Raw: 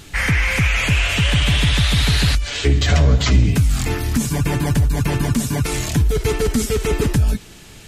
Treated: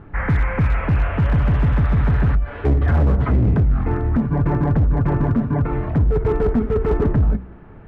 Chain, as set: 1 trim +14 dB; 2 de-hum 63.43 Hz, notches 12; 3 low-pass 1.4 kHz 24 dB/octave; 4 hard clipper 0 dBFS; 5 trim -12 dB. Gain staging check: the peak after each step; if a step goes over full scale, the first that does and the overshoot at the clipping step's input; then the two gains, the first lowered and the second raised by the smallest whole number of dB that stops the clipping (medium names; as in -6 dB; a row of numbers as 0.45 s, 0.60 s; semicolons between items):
+11.0 dBFS, +10.0 dBFS, +9.5 dBFS, 0.0 dBFS, -12.0 dBFS; step 1, 9.5 dB; step 1 +4 dB, step 5 -2 dB